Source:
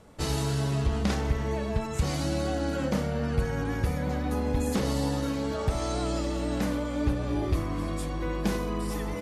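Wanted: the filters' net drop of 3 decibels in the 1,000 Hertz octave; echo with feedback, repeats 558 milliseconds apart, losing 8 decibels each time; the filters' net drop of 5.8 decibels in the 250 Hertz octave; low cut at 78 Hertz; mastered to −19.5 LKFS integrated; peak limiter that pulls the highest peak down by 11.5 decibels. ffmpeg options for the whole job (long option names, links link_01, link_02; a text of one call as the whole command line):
ffmpeg -i in.wav -af "highpass=78,equalizer=frequency=250:width_type=o:gain=-7.5,equalizer=frequency=1000:width_type=o:gain=-3.5,alimiter=level_in=4.5dB:limit=-24dB:level=0:latency=1,volume=-4.5dB,aecho=1:1:558|1116|1674|2232|2790:0.398|0.159|0.0637|0.0255|0.0102,volume=17dB" out.wav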